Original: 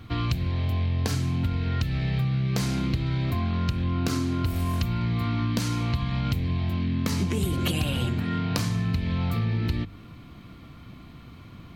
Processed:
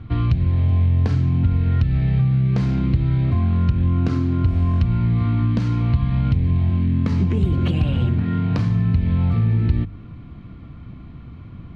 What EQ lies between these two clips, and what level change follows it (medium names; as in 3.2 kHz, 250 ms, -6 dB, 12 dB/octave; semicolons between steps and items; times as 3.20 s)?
Bessel low-pass 2.3 kHz, order 2; bass shelf 230 Hz +10.5 dB; 0.0 dB